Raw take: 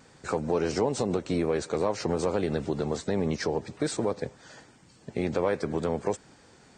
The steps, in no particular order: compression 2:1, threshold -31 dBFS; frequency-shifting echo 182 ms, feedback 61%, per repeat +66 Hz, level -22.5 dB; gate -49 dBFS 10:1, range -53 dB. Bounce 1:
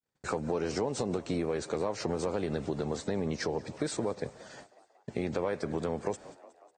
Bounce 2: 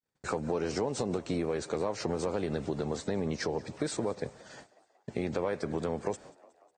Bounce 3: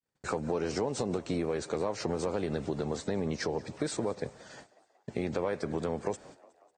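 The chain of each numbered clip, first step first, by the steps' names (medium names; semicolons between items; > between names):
gate > frequency-shifting echo > compression; compression > gate > frequency-shifting echo; gate > compression > frequency-shifting echo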